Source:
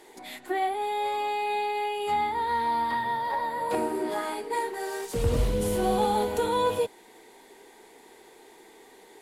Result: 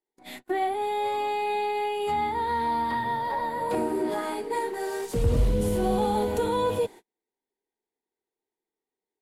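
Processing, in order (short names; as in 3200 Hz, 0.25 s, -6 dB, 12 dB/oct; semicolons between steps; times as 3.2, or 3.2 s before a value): gate -42 dBFS, range -41 dB; low shelf 400 Hz +8 dB; in parallel at +2 dB: limiter -18.5 dBFS, peak gain reduction 11.5 dB; on the sum: gain -8 dB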